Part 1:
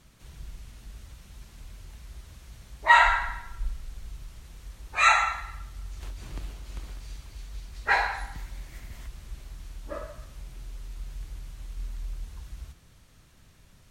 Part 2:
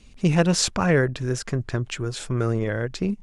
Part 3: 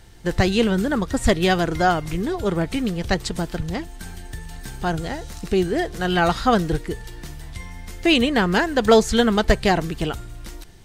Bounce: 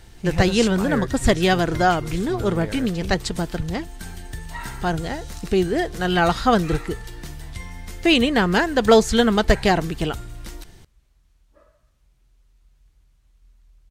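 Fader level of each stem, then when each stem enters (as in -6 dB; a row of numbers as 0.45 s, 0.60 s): -19.0 dB, -8.0 dB, +0.5 dB; 1.65 s, 0.00 s, 0.00 s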